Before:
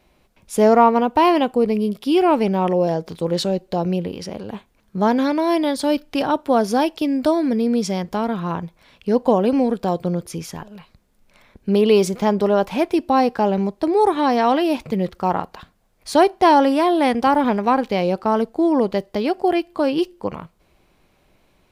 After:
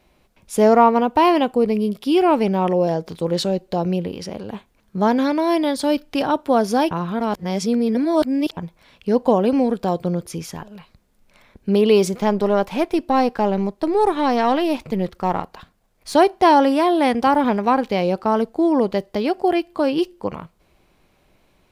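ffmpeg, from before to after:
-filter_complex "[0:a]asettb=1/sr,asplit=3[a][b][c];[a]atrim=end=12.184[d];[b]atrim=start=12.18:end=16.15,asetpts=PTS-STARTPTS,afade=t=in:d=0.004:c=qsin,afade=t=out:st=3.966:d=0.004:c=qsin,aeval=exprs='if(lt(val(0),0),0.708*val(0),val(0))':c=same[e];[c]atrim=start=16.146[f];[d][e]acrossfade=d=0.004:c1=hsin:c2=qsin[g];[g][f]acrossfade=d=0.004:c1=qsin:c2=hsin,asplit=3[h][i][j];[h]atrim=end=6.912[k];[i]atrim=start=6.908:end=8.572,asetpts=PTS-STARTPTS,areverse[l];[j]atrim=start=8.568[m];[k][l]acrossfade=d=0.004:c1=hsin:c2=hsin[n];[n][m]acrossfade=d=0.004:c1=hsin:c2=hsin"

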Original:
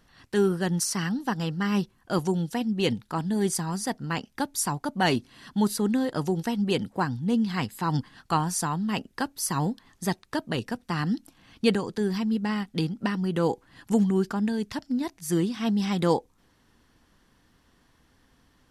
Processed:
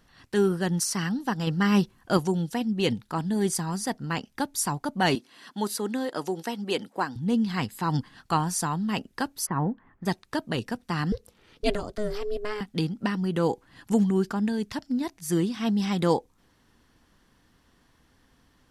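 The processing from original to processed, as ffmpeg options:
-filter_complex "[0:a]asettb=1/sr,asplit=3[a][b][c];[a]atrim=end=5.154[d];[b]atrim=start=5.15:end=7.16,asetpts=PTS-STARTPTS,afade=t=in:d=0.004:c=qsin,afade=t=out:st=2.006:d=0.004:c=qsin,highpass=320[e];[c]atrim=start=7.156[f];[d][e]acrossfade=d=0.004:c1=hsin:c2=qsin[g];[g][f]acrossfade=d=0.004:c1=qsin:c2=hsin,asplit=3[h][i][j];[h]afade=t=out:st=9.45:d=0.02[k];[i]lowpass=f=1.9k:w=0.5412,lowpass=f=1.9k:w=1.3066,afade=t=in:st=9.45:d=0.02,afade=t=out:st=10.05:d=0.02[l];[j]afade=t=in:st=10.05:d=0.02[m];[k][l][m]amix=inputs=3:normalize=0,asettb=1/sr,asplit=3[n][o][p];[n]atrim=end=11.124[q];[o]atrim=start=11.12:end=12.61,asetpts=PTS-STARTPTS,afade=t=in:d=0.004:c=qsin,afade=t=out:st=1.486:d=0.004:c=qsin,aeval=exprs='val(0)*sin(2*PI*210*n/s)':c=same[r];[p]atrim=start=12.606[s];[q][r]acrossfade=d=0.004:c1=hsin:c2=qsin[t];[t][s]acrossfade=d=0.004:c1=qsin:c2=hsin,asplit=3[u][v][w];[u]atrim=end=1.472[x];[v]atrim=start=1.468:end=2.172,asetpts=PTS-STARTPTS,volume=4dB[y];[w]atrim=start=2.168[z];[x][y]acrossfade=d=0.004:c1=hsin:c2=hsin[aa];[aa][z]acrossfade=d=0.004:c1=hsin:c2=hsin"

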